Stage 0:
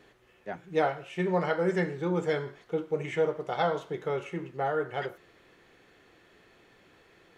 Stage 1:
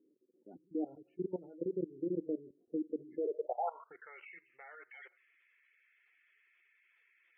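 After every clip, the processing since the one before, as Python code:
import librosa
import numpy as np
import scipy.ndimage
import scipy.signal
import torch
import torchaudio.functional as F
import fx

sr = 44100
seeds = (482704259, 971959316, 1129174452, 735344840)

y = fx.filter_sweep_bandpass(x, sr, from_hz=300.0, to_hz=2200.0, start_s=3.13, end_s=4.21, q=5.5)
y = fx.level_steps(y, sr, step_db=19)
y = fx.spec_gate(y, sr, threshold_db=-20, keep='strong')
y = y * librosa.db_to_amplitude(4.5)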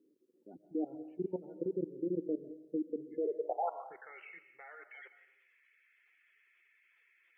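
y = fx.rev_freeverb(x, sr, rt60_s=0.79, hf_ratio=0.75, predelay_ms=95, drr_db=12.5)
y = y * librosa.db_to_amplitude(1.0)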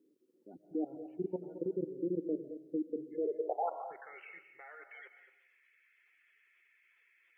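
y = x + 10.0 ** (-12.5 / 20.0) * np.pad(x, (int(219 * sr / 1000.0), 0))[:len(x)]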